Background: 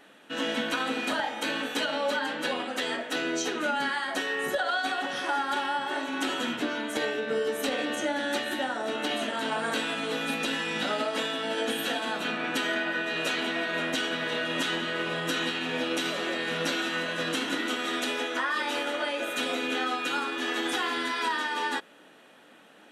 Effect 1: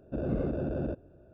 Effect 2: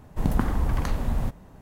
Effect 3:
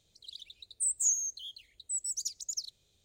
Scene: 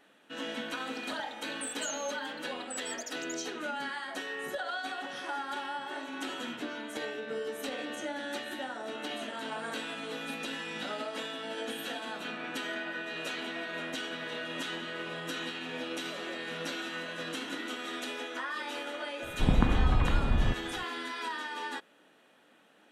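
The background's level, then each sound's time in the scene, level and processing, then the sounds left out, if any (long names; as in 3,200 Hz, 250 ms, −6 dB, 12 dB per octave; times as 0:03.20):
background −8 dB
0:00.81: mix in 3 −8.5 dB + multiband upward and downward compressor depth 70%
0:19.23: mix in 2 −1 dB + downsampling to 8,000 Hz
not used: 1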